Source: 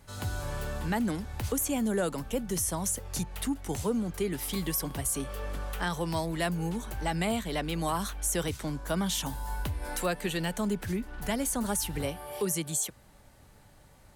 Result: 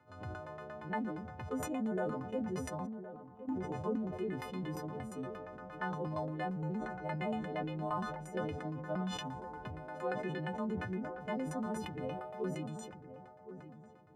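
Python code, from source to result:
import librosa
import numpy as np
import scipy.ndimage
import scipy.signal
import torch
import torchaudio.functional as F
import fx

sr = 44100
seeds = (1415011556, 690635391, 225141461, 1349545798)

p1 = fx.freq_snap(x, sr, grid_st=3)
p2 = scipy.signal.sosfilt(scipy.signal.butter(4, 99.0, 'highpass', fs=sr, output='sos'), p1)
p3 = fx.low_shelf(p2, sr, hz=130.0, db=-11.0, at=(0.41, 1.23))
p4 = fx.formant_cascade(p3, sr, vowel='a', at=(2.85, 3.47), fade=0.02)
p5 = fx.comb(p4, sr, ms=5.3, depth=0.51, at=(6.62, 7.16))
p6 = fx.filter_lfo_lowpass(p5, sr, shape='saw_down', hz=8.6, low_hz=490.0, high_hz=1600.0, q=1.0)
p7 = p6 + fx.echo_filtered(p6, sr, ms=1066, feedback_pct=31, hz=1100.0, wet_db=-11.5, dry=0)
p8 = fx.sustainer(p7, sr, db_per_s=40.0)
y = p8 * 10.0 ** (-7.0 / 20.0)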